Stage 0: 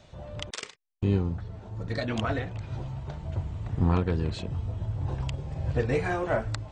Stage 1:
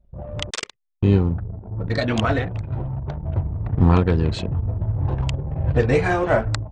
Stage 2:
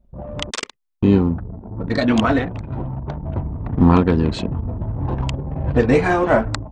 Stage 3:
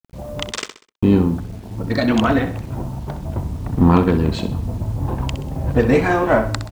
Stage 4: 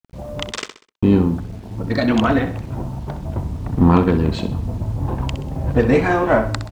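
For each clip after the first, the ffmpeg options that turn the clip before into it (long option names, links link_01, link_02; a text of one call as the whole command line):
ffmpeg -i in.wav -af "anlmdn=0.251,volume=8.5dB" out.wav
ffmpeg -i in.wav -af "equalizer=frequency=100:width_type=o:width=0.67:gain=-6,equalizer=frequency=250:width_type=o:width=0.67:gain=8,equalizer=frequency=1000:width_type=o:width=0.67:gain=4,volume=1.5dB" out.wav
ffmpeg -i in.wav -filter_complex "[0:a]acrusher=bits=7:mix=0:aa=0.000001,asplit=2[link_01][link_02];[link_02]aecho=0:1:64|128|192|256:0.282|0.11|0.0429|0.0167[link_03];[link_01][link_03]amix=inputs=2:normalize=0" out.wav
ffmpeg -i in.wav -af "highshelf=frequency=8200:gain=-7" out.wav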